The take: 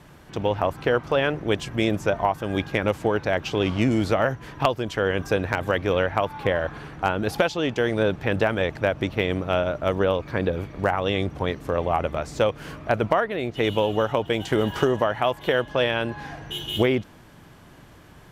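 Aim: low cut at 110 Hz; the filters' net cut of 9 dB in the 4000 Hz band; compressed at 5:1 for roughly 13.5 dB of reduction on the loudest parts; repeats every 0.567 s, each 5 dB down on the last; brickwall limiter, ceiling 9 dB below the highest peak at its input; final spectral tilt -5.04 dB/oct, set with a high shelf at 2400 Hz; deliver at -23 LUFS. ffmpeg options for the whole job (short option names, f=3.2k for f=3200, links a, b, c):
-af "highpass=110,highshelf=f=2.4k:g=-6.5,equalizer=f=4k:t=o:g=-7,acompressor=threshold=-33dB:ratio=5,alimiter=level_in=2dB:limit=-24dB:level=0:latency=1,volume=-2dB,aecho=1:1:567|1134|1701|2268|2835|3402|3969:0.562|0.315|0.176|0.0988|0.0553|0.031|0.0173,volume=14.5dB"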